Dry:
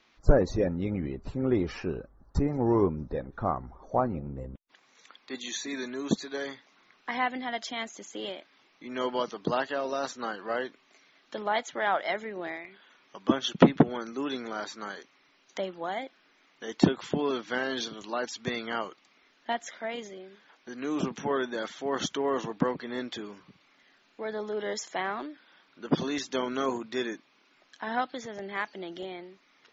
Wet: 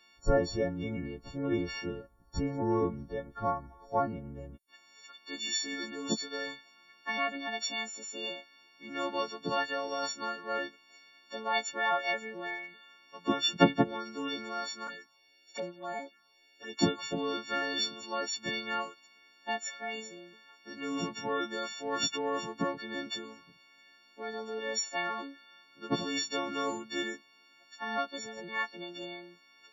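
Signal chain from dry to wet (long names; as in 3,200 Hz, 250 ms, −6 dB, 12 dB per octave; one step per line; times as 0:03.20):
every partial snapped to a pitch grid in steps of 4 semitones
0:14.87–0:16.79: phaser swept by the level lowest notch 150 Hz, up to 3,200 Hz, full sweep at −28 dBFS
level −5 dB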